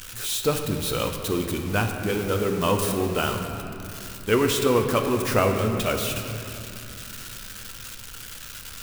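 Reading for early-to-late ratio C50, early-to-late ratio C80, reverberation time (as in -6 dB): 5.0 dB, 6.0 dB, 2.8 s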